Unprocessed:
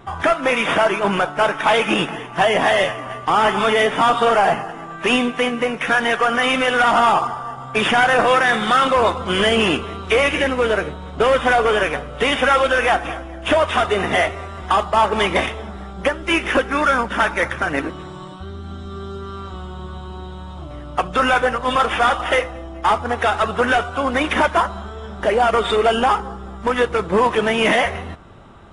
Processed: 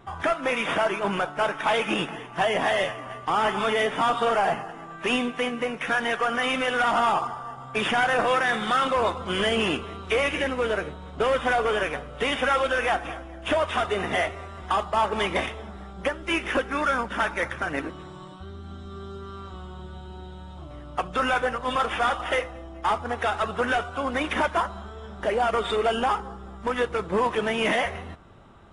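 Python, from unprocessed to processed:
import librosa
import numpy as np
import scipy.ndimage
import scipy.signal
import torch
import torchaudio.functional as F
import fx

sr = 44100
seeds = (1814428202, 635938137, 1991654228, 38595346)

y = fx.notch(x, sr, hz=1100.0, q=9.4, at=(19.81, 20.58))
y = F.gain(torch.from_numpy(y), -7.5).numpy()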